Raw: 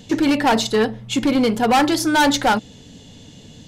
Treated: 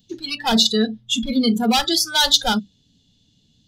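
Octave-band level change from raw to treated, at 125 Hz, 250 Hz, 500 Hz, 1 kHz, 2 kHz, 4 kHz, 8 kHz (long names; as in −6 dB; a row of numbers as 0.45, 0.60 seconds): −2.0, −2.5, −6.0, −6.0, −4.5, +7.5, +3.0 decibels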